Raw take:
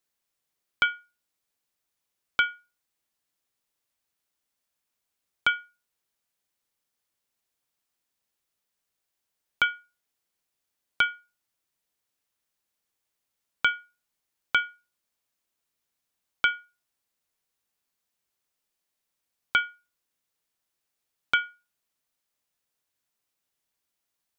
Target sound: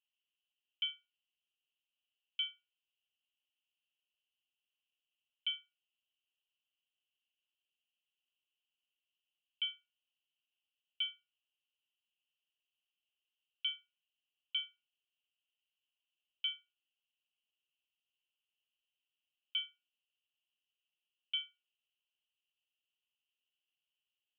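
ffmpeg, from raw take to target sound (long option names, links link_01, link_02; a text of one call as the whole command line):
ffmpeg -i in.wav -af "alimiter=limit=-19dB:level=0:latency=1:release=78,asuperpass=centerf=2900:order=4:qfactor=6.1,volume=6dB" out.wav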